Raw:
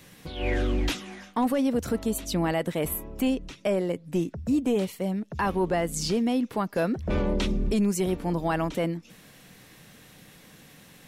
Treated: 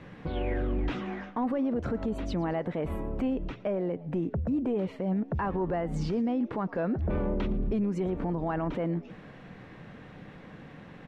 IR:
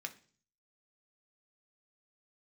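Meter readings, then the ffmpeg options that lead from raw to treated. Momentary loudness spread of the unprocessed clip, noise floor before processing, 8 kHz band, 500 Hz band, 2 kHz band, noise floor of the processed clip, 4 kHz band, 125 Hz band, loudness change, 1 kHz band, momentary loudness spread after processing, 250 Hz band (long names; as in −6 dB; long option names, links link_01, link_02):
5 LU, −53 dBFS, below −20 dB, −4.0 dB, −7.0 dB, −49 dBFS, −13.0 dB, −1.0 dB, −3.5 dB, −4.0 dB, 18 LU, −3.0 dB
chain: -filter_complex "[0:a]lowpass=1600,alimiter=level_in=5.5dB:limit=-24dB:level=0:latency=1:release=83,volume=-5.5dB,asplit=4[link_01][link_02][link_03][link_04];[link_02]adelay=113,afreqshift=80,volume=-20.5dB[link_05];[link_03]adelay=226,afreqshift=160,volume=-29.1dB[link_06];[link_04]adelay=339,afreqshift=240,volume=-37.8dB[link_07];[link_01][link_05][link_06][link_07]amix=inputs=4:normalize=0,volume=6.5dB"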